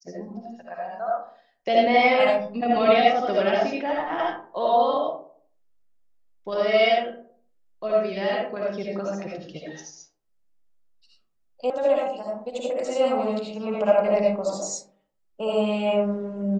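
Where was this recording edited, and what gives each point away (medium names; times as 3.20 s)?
11.70 s: sound stops dead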